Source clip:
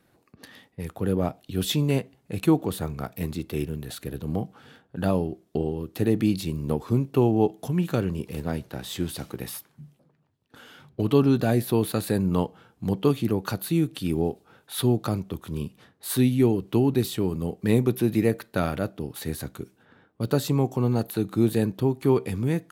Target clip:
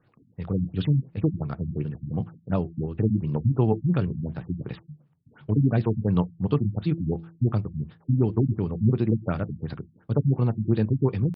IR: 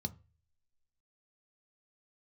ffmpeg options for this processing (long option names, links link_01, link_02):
-filter_complex "[0:a]atempo=2,bandreject=frequency=166.2:width_type=h:width=4,bandreject=frequency=332.4:width_type=h:width=4,asplit=2[link_01][link_02];[1:a]atrim=start_sample=2205,atrim=end_sample=3969,highshelf=frequency=4300:gain=-10.5[link_03];[link_02][link_03]afir=irnorm=-1:irlink=0,volume=-13dB[link_04];[link_01][link_04]amix=inputs=2:normalize=0,acrossover=split=8300[link_05][link_06];[link_06]acompressor=threshold=-50dB:ratio=4:attack=1:release=60[link_07];[link_05][link_07]amix=inputs=2:normalize=0,afftfilt=real='re*lt(b*sr/1024,250*pow(5500/250,0.5+0.5*sin(2*PI*2.8*pts/sr)))':imag='im*lt(b*sr/1024,250*pow(5500/250,0.5+0.5*sin(2*PI*2.8*pts/sr)))':win_size=1024:overlap=0.75"